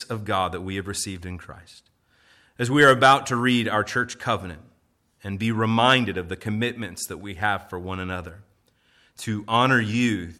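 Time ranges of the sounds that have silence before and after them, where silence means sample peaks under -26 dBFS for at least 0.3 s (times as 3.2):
2.6–4.53
5.26–8.28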